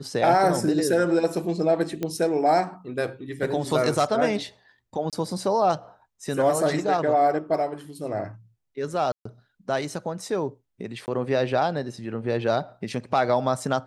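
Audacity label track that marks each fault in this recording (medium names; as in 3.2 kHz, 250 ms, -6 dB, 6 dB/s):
2.030000	2.030000	pop -15 dBFS
5.100000	5.130000	dropout 27 ms
9.120000	9.250000	dropout 134 ms
11.060000	11.080000	dropout 19 ms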